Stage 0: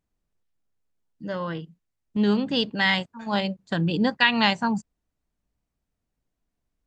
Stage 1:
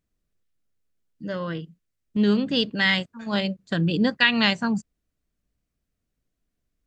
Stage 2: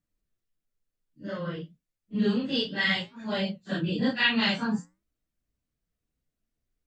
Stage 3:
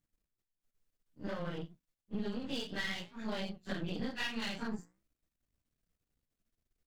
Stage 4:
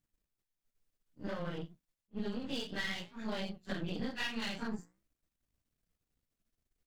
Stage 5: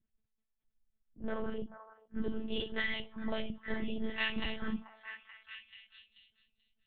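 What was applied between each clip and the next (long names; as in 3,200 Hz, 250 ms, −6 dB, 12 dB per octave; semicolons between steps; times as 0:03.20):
parametric band 870 Hz −10 dB 0.49 octaves; level +1.5 dB
random phases in long frames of 100 ms; flanger 0.57 Hz, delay 5.2 ms, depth 7.8 ms, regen −84%
gain on one half-wave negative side −12 dB; downward compressor 6 to 1, threshold −36 dBFS, peak gain reduction 15 dB; level +2 dB
level that may rise only so fast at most 530 dB per second
spectral envelope exaggerated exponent 1.5; one-pitch LPC vocoder at 8 kHz 220 Hz; echo through a band-pass that steps 435 ms, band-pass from 1,000 Hz, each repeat 0.7 octaves, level −7 dB; level +3.5 dB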